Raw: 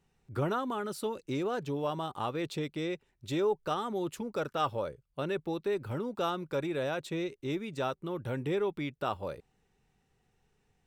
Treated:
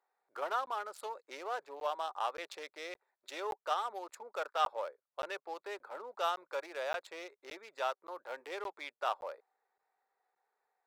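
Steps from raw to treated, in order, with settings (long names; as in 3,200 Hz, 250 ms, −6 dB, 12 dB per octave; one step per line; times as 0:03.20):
adaptive Wiener filter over 15 samples
high-pass filter 620 Hz 24 dB per octave
regular buffer underruns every 0.57 s, samples 512, zero, from 0:00.66
level +1 dB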